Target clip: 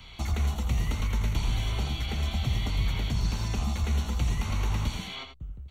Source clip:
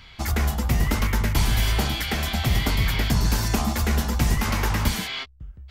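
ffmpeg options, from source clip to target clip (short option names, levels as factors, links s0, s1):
-filter_complex "[0:a]acrossover=split=7000[s0][s1];[s1]acompressor=threshold=0.00316:ratio=4:attack=1:release=60[s2];[s0][s2]amix=inputs=2:normalize=0,equalizer=f=1700:t=o:w=0.47:g=-10.5,acrossover=split=160|1500|3200[s3][s4][s5][s6];[s3]acompressor=threshold=0.0501:ratio=4[s7];[s4]acompressor=threshold=0.00891:ratio=4[s8];[s5]acompressor=threshold=0.00562:ratio=4[s9];[s6]acompressor=threshold=0.00562:ratio=4[s10];[s7][s8][s9][s10]amix=inputs=4:normalize=0,asuperstop=centerf=5000:order=20:qfactor=6.4,aecho=1:1:84:0.398"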